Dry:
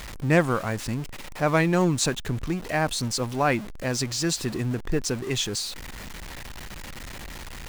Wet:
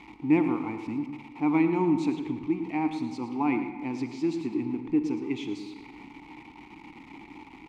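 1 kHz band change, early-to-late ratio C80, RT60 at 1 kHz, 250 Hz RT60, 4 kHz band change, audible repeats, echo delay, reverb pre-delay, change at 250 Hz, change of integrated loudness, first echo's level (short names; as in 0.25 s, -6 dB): -5.0 dB, 8.0 dB, 1.6 s, 1.7 s, -18.0 dB, 1, 0.112 s, 37 ms, +2.5 dB, -3.0 dB, -11.5 dB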